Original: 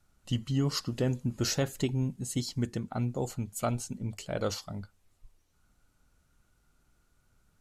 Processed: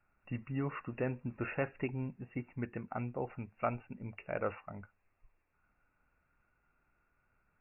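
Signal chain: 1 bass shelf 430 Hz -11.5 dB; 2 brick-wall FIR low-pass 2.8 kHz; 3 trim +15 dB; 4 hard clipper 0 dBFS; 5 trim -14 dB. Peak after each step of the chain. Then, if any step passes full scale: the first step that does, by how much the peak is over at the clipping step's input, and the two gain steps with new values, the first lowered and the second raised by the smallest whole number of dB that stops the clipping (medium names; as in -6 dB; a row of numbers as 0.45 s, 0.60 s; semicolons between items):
-18.5 dBFS, -19.5 dBFS, -4.5 dBFS, -4.5 dBFS, -18.5 dBFS; nothing clips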